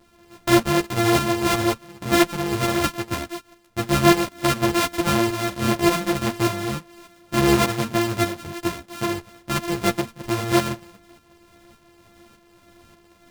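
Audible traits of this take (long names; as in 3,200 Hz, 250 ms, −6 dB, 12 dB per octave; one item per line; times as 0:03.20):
a buzz of ramps at a fixed pitch in blocks of 128 samples
tremolo saw up 1.7 Hz, depth 60%
a shimmering, thickened sound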